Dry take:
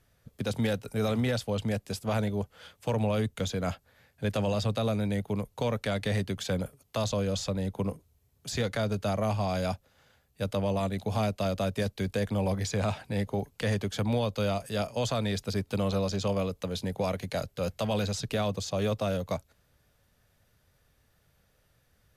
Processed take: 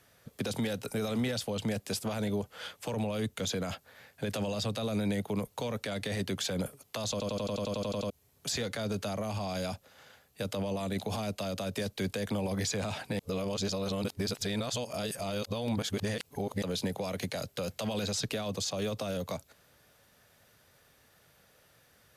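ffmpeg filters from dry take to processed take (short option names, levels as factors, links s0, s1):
-filter_complex "[0:a]asplit=14[s0][s1][s2][s3][s4][s5][s6][s7][s8][s9][s10][s11][s12][s13];[s0]atrim=end=7.202[s14];[s1]atrim=start=7.108:end=7.202[s15];[s2]atrim=start=7.108:end=7.202[s16];[s3]atrim=start=7.108:end=7.202[s17];[s4]atrim=start=7.108:end=7.202[s18];[s5]atrim=start=7.108:end=7.202[s19];[s6]atrim=start=7.108:end=7.202[s20];[s7]atrim=start=7.108:end=7.202[s21];[s8]atrim=start=7.108:end=7.202[s22];[s9]atrim=start=7.108:end=7.202[s23];[s10]atrim=start=7.108:end=7.202[s24];[s11]atrim=start=8.098:end=13.192[s25];[s12]atrim=start=13.188:end=16.622,asetpts=PTS-STARTPTS,areverse[s26];[s13]atrim=start=16.618[s27];[s14][s15]acrossfade=d=0.004:c1=hsin:c2=hsin[s28];[s28][s16]acrossfade=d=0.004:c1=hsin:c2=hsin[s29];[s29][s17]acrossfade=d=0.004:c1=hsin:c2=hsin[s30];[s30][s18]acrossfade=d=0.004:c1=hsin:c2=hsin[s31];[s31][s19]acrossfade=d=0.004:c1=hsin:c2=hsin[s32];[s32][s20]acrossfade=d=0.004:c1=hsin:c2=hsin[s33];[s33][s21]acrossfade=d=0.004:c1=hsin:c2=hsin[s34];[s34][s22]acrossfade=d=0.004:c1=hsin:c2=hsin[s35];[s35][s23]acrossfade=d=0.004:c1=hsin:c2=hsin[s36];[s36][s24]acrossfade=d=0.004:c1=hsin:c2=hsin[s37];[s37][s25]acrossfade=d=0.004:c1=hsin:c2=hsin[s38];[s38][s26]acrossfade=d=0.004:c1=hsin:c2=hsin[s39];[s39][s27]acrossfade=d=0.004:c1=hsin:c2=hsin,highpass=f=290:p=1,alimiter=level_in=2.24:limit=0.0631:level=0:latency=1:release=47,volume=0.447,acrossover=split=370|3000[s40][s41][s42];[s41]acompressor=threshold=0.00501:ratio=3[s43];[s40][s43][s42]amix=inputs=3:normalize=0,volume=2.51"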